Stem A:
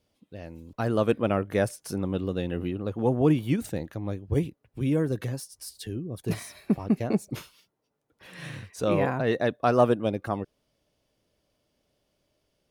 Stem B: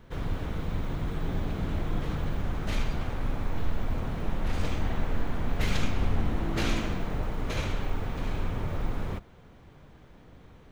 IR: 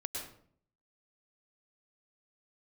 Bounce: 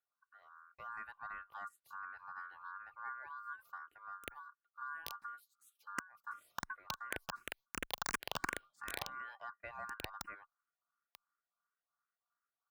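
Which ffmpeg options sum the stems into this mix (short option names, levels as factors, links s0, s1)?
-filter_complex "[0:a]equalizer=f=125:t=o:w=1:g=9,equalizer=f=250:t=o:w=1:g=-3,equalizer=f=500:t=o:w=1:g=-7,equalizer=f=1000:t=o:w=1:g=-3,equalizer=f=2000:t=o:w=1:g=-9,equalizer=f=4000:t=o:w=1:g=-9,equalizer=f=8000:t=o:w=1:g=-9,acompressor=threshold=0.0562:ratio=2.5,volume=0.224[s0];[1:a]acompressor=threshold=0.0126:ratio=1.5,acrusher=bits=3:mix=0:aa=0.000001,adelay=2300,volume=0.944[s1];[s0][s1]amix=inputs=2:normalize=0,acrossover=split=170[s2][s3];[s2]acompressor=threshold=0.00708:ratio=6[s4];[s4][s3]amix=inputs=2:normalize=0,aeval=exprs='val(0)*sin(2*PI*1300*n/s)':c=same,asplit=2[s5][s6];[s6]afreqshift=2.8[s7];[s5][s7]amix=inputs=2:normalize=1"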